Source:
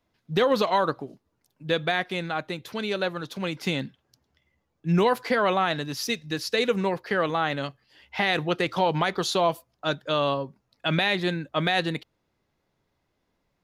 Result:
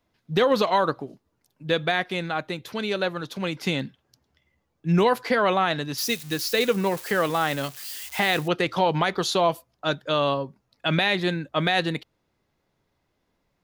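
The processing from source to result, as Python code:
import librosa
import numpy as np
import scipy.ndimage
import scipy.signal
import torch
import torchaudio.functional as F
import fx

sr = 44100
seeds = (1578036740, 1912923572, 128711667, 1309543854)

y = fx.crossing_spikes(x, sr, level_db=-29.0, at=(5.98, 8.48))
y = y * librosa.db_to_amplitude(1.5)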